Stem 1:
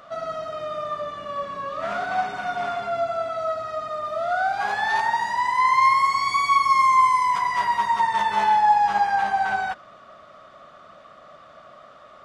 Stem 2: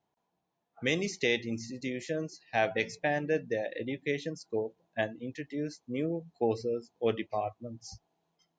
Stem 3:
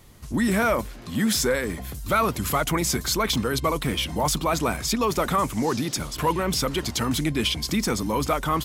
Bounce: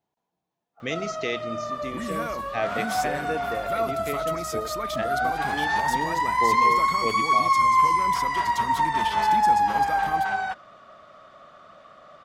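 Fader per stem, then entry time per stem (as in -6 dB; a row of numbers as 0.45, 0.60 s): -2.0, -1.0, -11.5 dB; 0.80, 0.00, 1.60 s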